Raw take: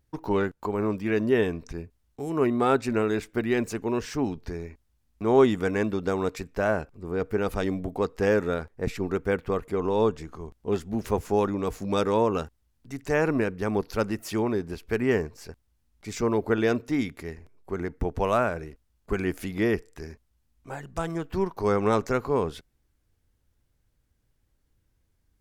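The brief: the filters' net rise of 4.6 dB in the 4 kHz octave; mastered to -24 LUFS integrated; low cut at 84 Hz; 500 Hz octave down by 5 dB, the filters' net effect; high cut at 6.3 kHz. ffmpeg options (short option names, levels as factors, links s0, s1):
-af "highpass=84,lowpass=6300,equalizer=f=500:t=o:g=-6.5,equalizer=f=4000:t=o:g=6.5,volume=1.88"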